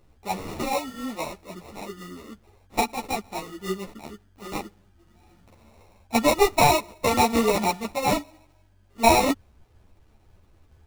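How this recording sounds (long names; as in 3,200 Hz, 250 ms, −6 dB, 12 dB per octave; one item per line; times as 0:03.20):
aliases and images of a low sample rate 1,600 Hz, jitter 0%
a shimmering, thickened sound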